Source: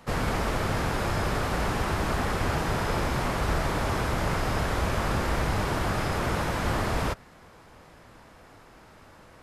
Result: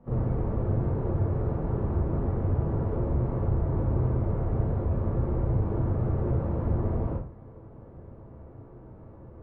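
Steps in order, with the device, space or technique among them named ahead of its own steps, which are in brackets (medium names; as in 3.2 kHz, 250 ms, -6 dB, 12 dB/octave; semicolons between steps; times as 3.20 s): television next door (compression 4:1, threshold -31 dBFS, peak gain reduction 8.5 dB; low-pass 440 Hz 12 dB/octave; reverberation RT60 0.40 s, pre-delay 30 ms, DRR -7.5 dB)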